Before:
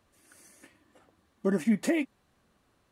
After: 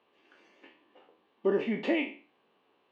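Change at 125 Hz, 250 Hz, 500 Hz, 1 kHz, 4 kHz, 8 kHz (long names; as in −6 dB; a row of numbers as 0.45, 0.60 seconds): −8.5 dB, −4.5 dB, +3.0 dB, +2.0 dB, +3.0 dB, below −20 dB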